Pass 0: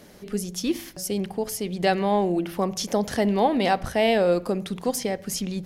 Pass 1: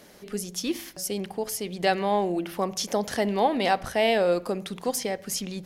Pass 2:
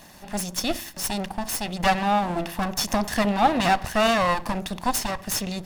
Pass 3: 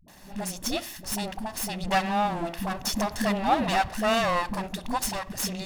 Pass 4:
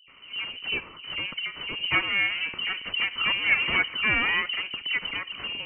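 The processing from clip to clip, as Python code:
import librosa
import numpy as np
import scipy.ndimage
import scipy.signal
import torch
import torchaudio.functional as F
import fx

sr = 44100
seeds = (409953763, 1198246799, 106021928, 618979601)

y1 = fx.low_shelf(x, sr, hz=290.0, db=-8.0)
y2 = fx.lower_of_two(y1, sr, delay_ms=1.1)
y2 = y2 * librosa.db_to_amplitude(5.5)
y3 = fx.dispersion(y2, sr, late='highs', ms=81.0, hz=310.0)
y3 = y3 * librosa.db_to_amplitude(-3.5)
y4 = fx.freq_invert(y3, sr, carrier_hz=3000)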